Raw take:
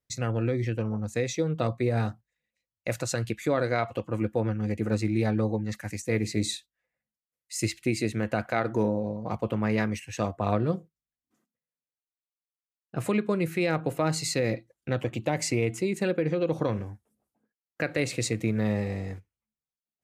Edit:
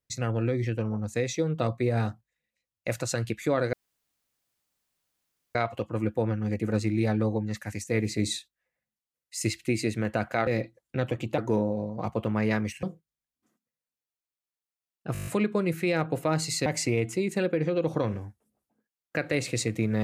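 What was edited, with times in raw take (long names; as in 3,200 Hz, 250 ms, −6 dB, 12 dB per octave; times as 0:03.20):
0:03.73: splice in room tone 1.82 s
0:10.10–0:10.71: remove
0:13.01: stutter 0.02 s, 8 plays
0:14.40–0:15.31: move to 0:08.65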